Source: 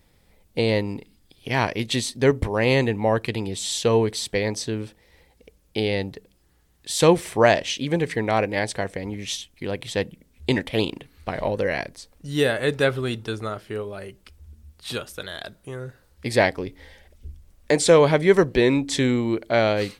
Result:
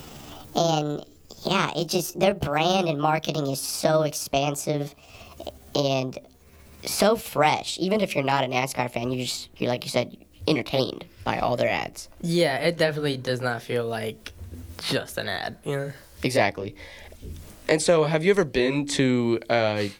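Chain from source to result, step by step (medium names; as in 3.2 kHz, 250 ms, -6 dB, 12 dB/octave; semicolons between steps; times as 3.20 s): pitch bend over the whole clip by +7 st ending unshifted; three bands compressed up and down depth 70%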